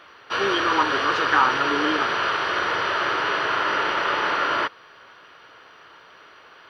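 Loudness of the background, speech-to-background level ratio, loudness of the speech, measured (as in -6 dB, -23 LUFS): -23.0 LUFS, -1.5 dB, -24.5 LUFS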